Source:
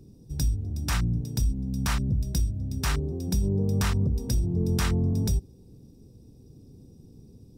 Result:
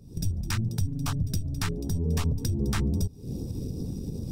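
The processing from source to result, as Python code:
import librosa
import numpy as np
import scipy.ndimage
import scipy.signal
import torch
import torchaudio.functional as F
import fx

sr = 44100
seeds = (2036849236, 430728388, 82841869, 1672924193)

y = fx.recorder_agc(x, sr, target_db=-24.0, rise_db_per_s=44.0, max_gain_db=30)
y = fx.stretch_grains(y, sr, factor=0.57, grain_ms=22.0)
y = fx.filter_lfo_notch(y, sr, shape='saw_up', hz=2.6, low_hz=300.0, high_hz=2800.0, q=2.1)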